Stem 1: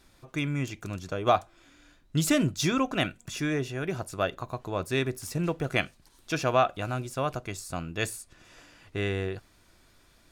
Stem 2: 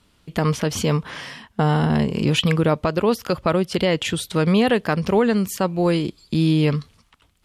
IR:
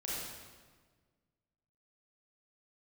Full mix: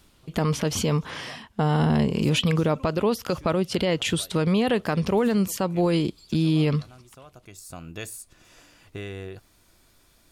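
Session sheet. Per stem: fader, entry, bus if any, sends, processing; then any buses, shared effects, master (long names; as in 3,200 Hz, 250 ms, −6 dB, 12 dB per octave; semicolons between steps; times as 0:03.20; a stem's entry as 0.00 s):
0.0 dB, 0.00 s, no send, high-shelf EQ 10,000 Hz +10.5 dB; downward compressor 2.5 to 1, threshold −34 dBFS, peak gain reduction 11.5 dB; automatic ducking −13 dB, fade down 0.30 s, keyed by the second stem
−0.5 dB, 0.00 s, no send, no processing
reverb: not used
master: parametric band 1,700 Hz −2.5 dB; brickwall limiter −13.5 dBFS, peak gain reduction 5 dB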